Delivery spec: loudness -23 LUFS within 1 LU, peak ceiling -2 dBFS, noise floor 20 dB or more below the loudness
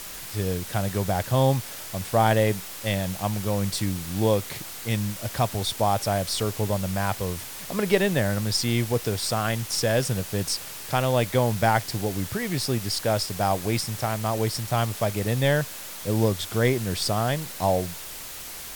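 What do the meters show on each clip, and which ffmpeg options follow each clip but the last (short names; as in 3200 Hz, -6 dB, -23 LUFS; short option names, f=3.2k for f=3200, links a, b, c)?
noise floor -38 dBFS; noise floor target -46 dBFS; loudness -25.5 LUFS; peak -6.5 dBFS; loudness target -23.0 LUFS
-> -af "afftdn=nr=8:nf=-38"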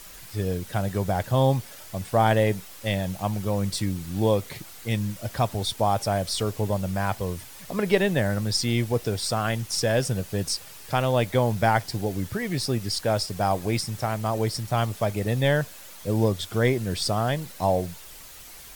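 noise floor -44 dBFS; noise floor target -46 dBFS
-> -af "afftdn=nr=6:nf=-44"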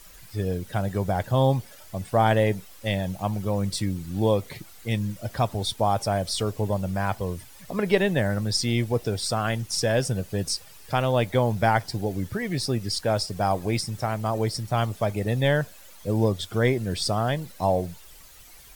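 noise floor -48 dBFS; loudness -26.0 LUFS; peak -6.5 dBFS; loudness target -23.0 LUFS
-> -af "volume=3dB"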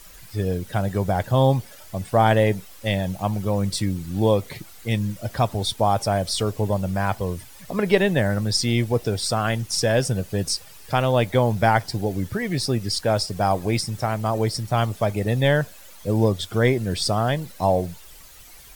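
loudness -23.0 LUFS; peak -3.5 dBFS; noise floor -45 dBFS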